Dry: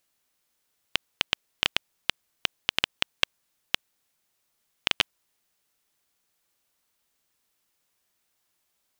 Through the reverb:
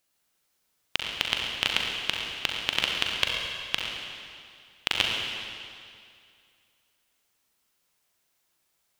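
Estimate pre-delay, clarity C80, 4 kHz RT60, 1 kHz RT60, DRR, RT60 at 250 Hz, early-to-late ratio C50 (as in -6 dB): 39 ms, 1.5 dB, 2.2 s, 2.3 s, -1.0 dB, 2.3 s, 0.5 dB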